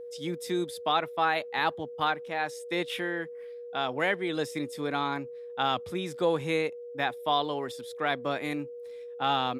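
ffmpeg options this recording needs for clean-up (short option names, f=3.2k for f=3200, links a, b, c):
-af "bandreject=f=480:w=30"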